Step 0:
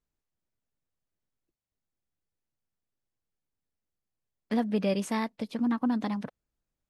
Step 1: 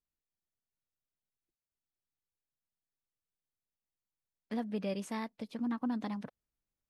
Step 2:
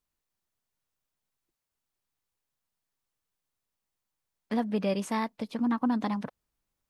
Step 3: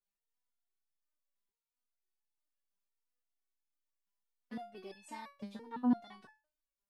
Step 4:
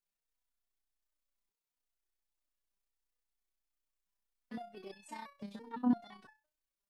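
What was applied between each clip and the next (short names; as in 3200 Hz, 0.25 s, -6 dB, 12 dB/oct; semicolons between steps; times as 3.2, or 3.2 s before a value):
vocal rider 2 s; gain -7.5 dB
bell 1000 Hz +4 dB 0.85 oct; gain +7 dB
stepped resonator 5.9 Hz 200–860 Hz; gain +2 dB
AM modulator 31 Hz, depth 30%; gain +2 dB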